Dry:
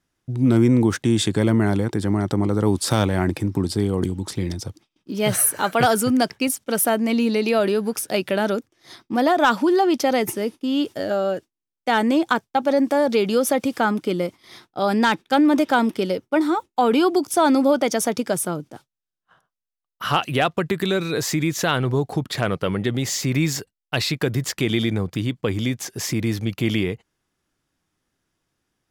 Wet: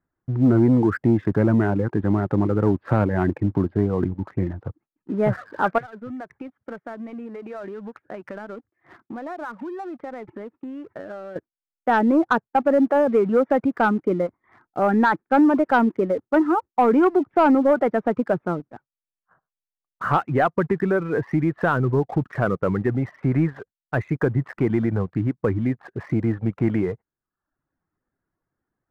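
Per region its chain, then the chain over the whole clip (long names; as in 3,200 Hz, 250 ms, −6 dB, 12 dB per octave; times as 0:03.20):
0:05.78–0:11.36: downward compressor 5 to 1, threshold −34 dBFS + high-pass filter 45 Hz + high-shelf EQ 2,200 Hz +8 dB
whole clip: Butterworth low-pass 1,800 Hz 36 dB per octave; reverb reduction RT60 0.65 s; leveller curve on the samples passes 1; level −1.5 dB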